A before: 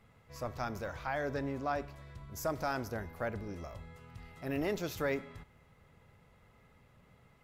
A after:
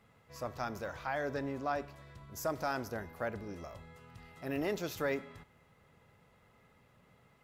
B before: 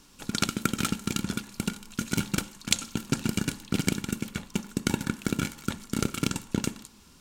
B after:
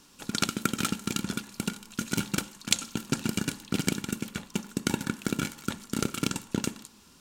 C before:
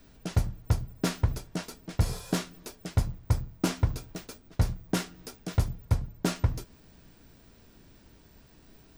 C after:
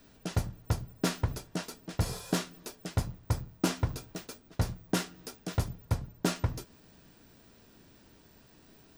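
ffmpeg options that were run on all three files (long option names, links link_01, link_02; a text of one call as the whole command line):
ffmpeg -i in.wav -af "lowshelf=frequency=82:gain=-11,bandreject=frequency=2200:width=29" out.wav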